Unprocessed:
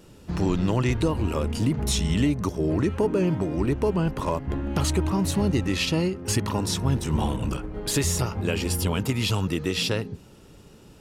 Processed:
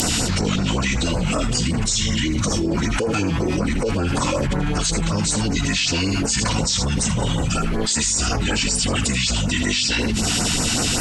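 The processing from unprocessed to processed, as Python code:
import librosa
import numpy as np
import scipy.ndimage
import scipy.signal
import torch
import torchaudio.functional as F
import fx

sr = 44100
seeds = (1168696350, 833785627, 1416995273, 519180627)

p1 = fx.peak_eq(x, sr, hz=12000.0, db=4.5, octaves=0.75)
p2 = fx.pitch_keep_formants(p1, sr, semitones=-11.0)
p3 = fx.tilt_shelf(p2, sr, db=-7.5, hz=1200.0)
p4 = p3 + fx.echo_single(p3, sr, ms=80, db=-15.0, dry=0)
p5 = fx.filter_lfo_notch(p4, sr, shape='sine', hz=5.3, low_hz=440.0, high_hz=3500.0, q=0.83)
y = fx.env_flatten(p5, sr, amount_pct=100)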